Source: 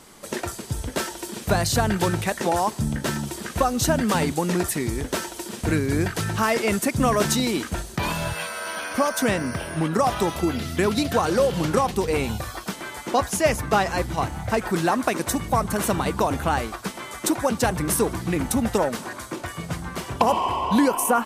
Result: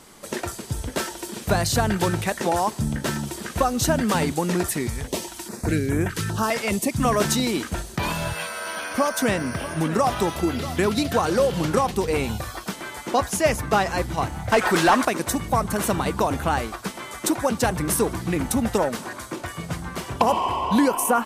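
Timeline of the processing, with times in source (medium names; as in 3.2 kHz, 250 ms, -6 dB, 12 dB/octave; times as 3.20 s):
4.87–7.05 s: step-sequenced notch 4.9 Hz 330–4500 Hz
8.76–10.85 s: delay 637 ms -14 dB
14.52–15.05 s: overdrive pedal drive 17 dB, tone 6.2 kHz, clips at -7.5 dBFS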